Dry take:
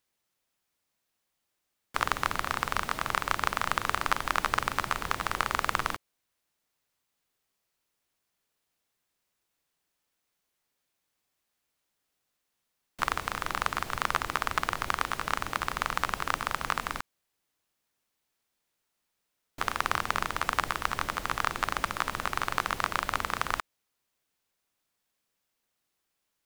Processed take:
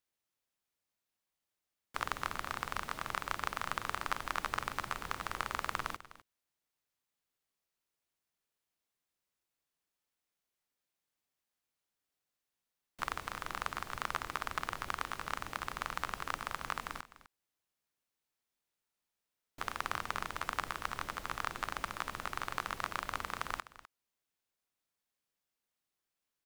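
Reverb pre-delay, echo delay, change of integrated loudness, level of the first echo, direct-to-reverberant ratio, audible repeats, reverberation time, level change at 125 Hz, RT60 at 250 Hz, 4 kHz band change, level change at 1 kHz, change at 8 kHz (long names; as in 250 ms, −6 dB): no reverb audible, 253 ms, −8.5 dB, −16.5 dB, no reverb audible, 1, no reverb audible, −8.5 dB, no reverb audible, −8.5 dB, −8.5 dB, −8.5 dB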